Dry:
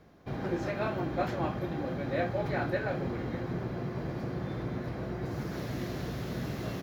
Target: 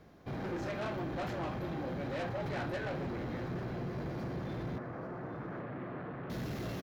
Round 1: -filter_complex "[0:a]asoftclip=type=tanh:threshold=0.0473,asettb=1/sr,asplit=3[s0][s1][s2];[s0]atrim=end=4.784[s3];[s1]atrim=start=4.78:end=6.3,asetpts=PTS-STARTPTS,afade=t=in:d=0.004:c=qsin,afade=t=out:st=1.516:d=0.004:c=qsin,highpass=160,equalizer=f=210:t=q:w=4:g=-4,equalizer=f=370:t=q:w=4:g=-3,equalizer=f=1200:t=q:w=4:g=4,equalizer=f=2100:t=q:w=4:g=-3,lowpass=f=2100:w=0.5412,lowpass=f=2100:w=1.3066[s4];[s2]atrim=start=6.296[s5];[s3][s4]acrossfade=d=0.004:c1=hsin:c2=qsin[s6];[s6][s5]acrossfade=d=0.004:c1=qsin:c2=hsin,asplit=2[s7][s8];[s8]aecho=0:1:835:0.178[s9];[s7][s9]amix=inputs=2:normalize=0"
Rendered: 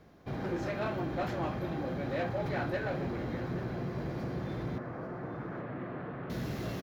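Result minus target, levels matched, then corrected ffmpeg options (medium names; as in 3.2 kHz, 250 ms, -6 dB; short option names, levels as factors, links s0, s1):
saturation: distortion -7 dB
-filter_complex "[0:a]asoftclip=type=tanh:threshold=0.0211,asettb=1/sr,asplit=3[s0][s1][s2];[s0]atrim=end=4.784[s3];[s1]atrim=start=4.78:end=6.3,asetpts=PTS-STARTPTS,afade=t=in:d=0.004:c=qsin,afade=t=out:st=1.516:d=0.004:c=qsin,highpass=160,equalizer=f=210:t=q:w=4:g=-4,equalizer=f=370:t=q:w=4:g=-3,equalizer=f=1200:t=q:w=4:g=4,equalizer=f=2100:t=q:w=4:g=-3,lowpass=f=2100:w=0.5412,lowpass=f=2100:w=1.3066[s4];[s2]atrim=start=6.296[s5];[s3][s4]acrossfade=d=0.004:c1=hsin:c2=qsin[s6];[s6][s5]acrossfade=d=0.004:c1=qsin:c2=hsin,asplit=2[s7][s8];[s8]aecho=0:1:835:0.178[s9];[s7][s9]amix=inputs=2:normalize=0"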